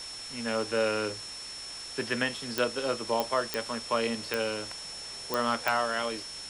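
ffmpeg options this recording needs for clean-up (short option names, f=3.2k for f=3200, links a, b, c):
-af "adeclick=t=4,bandreject=f=47:t=h:w=4,bandreject=f=94:t=h:w=4,bandreject=f=141:t=h:w=4,bandreject=f=188:t=h:w=4,bandreject=f=5.4k:w=30,afwtdn=0.0071"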